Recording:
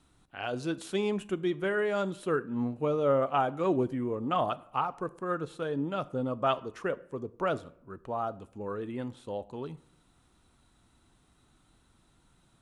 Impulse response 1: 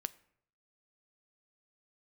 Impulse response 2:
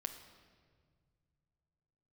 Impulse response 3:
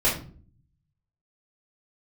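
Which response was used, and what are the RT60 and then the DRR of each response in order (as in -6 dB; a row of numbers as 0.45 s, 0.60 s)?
1; 0.65 s, 1.9 s, no single decay rate; 15.0 dB, 6.0 dB, -6.5 dB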